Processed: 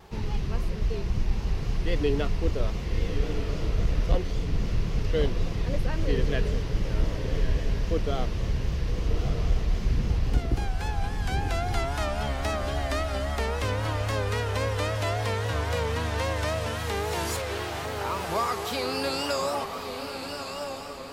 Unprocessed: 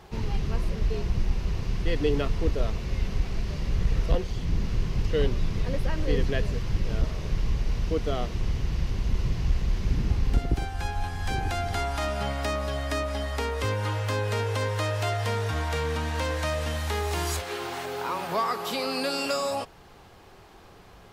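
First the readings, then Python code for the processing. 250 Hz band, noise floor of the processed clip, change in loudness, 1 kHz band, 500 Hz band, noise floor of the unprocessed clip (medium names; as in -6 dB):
0.0 dB, -35 dBFS, 0.0 dB, 0.0 dB, +0.5 dB, -50 dBFS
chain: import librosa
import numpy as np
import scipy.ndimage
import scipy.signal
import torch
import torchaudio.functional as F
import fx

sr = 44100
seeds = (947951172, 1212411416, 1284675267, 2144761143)

y = fx.echo_diffused(x, sr, ms=1205, feedback_pct=45, wet_db=-6.0)
y = fx.vibrato(y, sr, rate_hz=3.7, depth_cents=71.0)
y = y * librosa.db_to_amplitude(-1.0)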